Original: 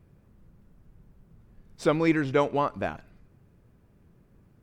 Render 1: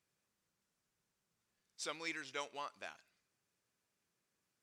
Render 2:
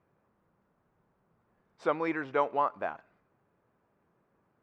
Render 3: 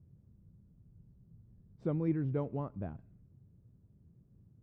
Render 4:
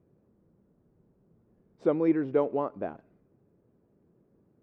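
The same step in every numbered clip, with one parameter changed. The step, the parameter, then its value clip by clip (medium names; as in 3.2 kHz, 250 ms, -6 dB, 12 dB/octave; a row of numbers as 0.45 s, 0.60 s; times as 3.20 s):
band-pass filter, frequency: 6.5 kHz, 1 kHz, 110 Hz, 390 Hz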